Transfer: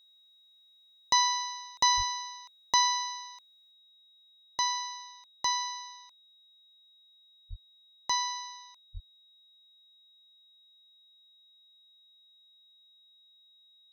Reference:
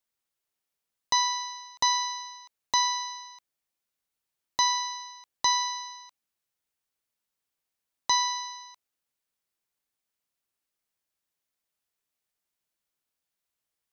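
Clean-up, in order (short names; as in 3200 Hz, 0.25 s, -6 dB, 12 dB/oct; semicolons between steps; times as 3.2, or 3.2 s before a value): notch 3800 Hz, Q 30; de-plosive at 1.96/7.49/8.93; gain 0 dB, from 3.71 s +5 dB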